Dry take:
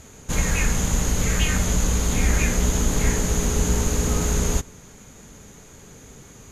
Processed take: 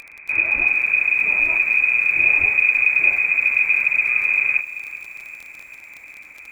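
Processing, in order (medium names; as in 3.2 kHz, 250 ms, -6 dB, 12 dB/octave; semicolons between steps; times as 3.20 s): bass shelf 350 Hz +6.5 dB; frequency inversion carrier 2.5 kHz; crackle 30 per s -26 dBFS; in parallel at -1 dB: compression 6:1, threshold -32 dBFS, peak gain reduction 23 dB; on the sum: bit-crushed delay 386 ms, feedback 55%, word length 6-bit, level -15 dB; trim -6.5 dB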